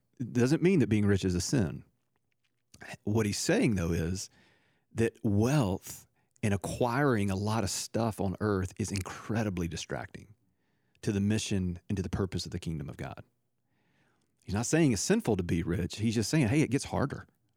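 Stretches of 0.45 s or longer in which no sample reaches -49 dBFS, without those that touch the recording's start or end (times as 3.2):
1.82–2.74
4.27–4.95
10.32–11.03
13.21–14.42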